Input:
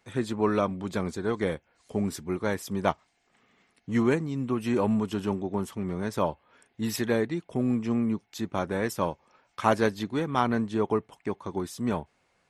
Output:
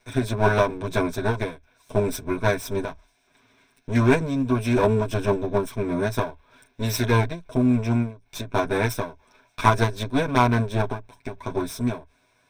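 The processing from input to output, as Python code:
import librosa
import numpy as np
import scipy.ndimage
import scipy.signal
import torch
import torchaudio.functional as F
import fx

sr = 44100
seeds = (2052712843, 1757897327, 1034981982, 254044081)

y = fx.lower_of_two(x, sr, delay_ms=8.1)
y = fx.ripple_eq(y, sr, per_octave=1.6, db=11)
y = fx.end_taper(y, sr, db_per_s=170.0)
y = F.gain(torch.from_numpy(y), 5.5).numpy()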